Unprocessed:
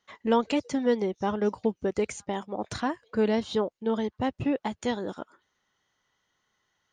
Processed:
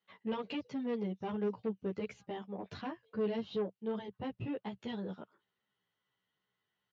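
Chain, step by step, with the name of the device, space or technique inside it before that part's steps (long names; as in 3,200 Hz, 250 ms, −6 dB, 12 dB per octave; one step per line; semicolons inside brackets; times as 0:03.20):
barber-pole flanger into a guitar amplifier (barber-pole flanger 11.7 ms −2.8 Hz; soft clipping −24 dBFS, distortion −13 dB; loudspeaker in its box 79–4,600 Hz, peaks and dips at 120 Hz +7 dB, 190 Hz +8 dB, 430 Hz +5 dB, 2,800 Hz +5 dB)
level −8.5 dB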